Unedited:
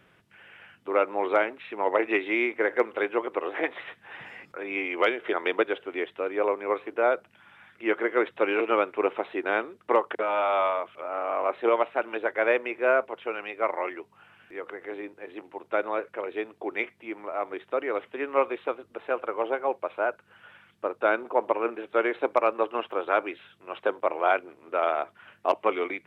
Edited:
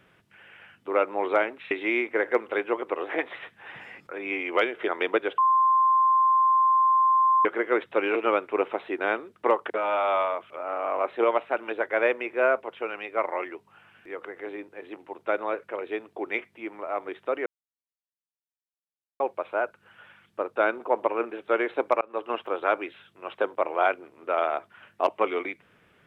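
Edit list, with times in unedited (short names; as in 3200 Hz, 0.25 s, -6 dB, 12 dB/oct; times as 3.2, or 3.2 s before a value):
1.71–2.16 cut
5.83–7.9 bleep 1050 Hz -17 dBFS
17.91–19.65 mute
22.46–22.75 fade in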